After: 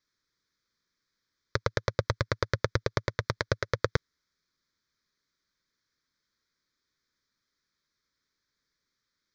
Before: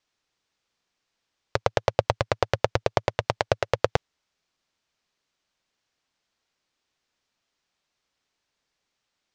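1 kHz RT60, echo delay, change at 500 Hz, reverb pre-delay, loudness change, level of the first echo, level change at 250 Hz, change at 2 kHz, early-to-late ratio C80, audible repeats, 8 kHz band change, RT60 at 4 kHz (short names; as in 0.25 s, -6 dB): none, none, -7.0 dB, none, -4.5 dB, none, -1.5 dB, -1.0 dB, none, none, -3.0 dB, none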